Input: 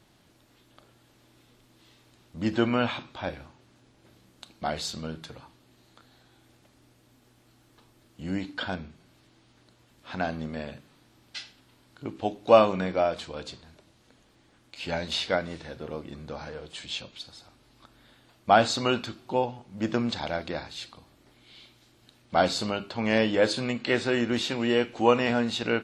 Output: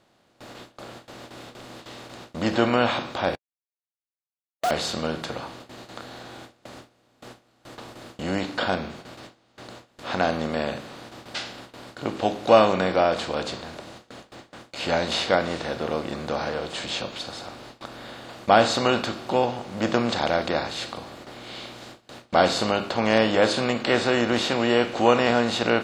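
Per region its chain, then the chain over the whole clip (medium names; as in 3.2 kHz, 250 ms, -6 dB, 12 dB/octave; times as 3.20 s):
3.35–4.71 s: formants replaced by sine waves + word length cut 6-bit, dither none
whole clip: spectral levelling over time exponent 0.6; gate with hold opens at -31 dBFS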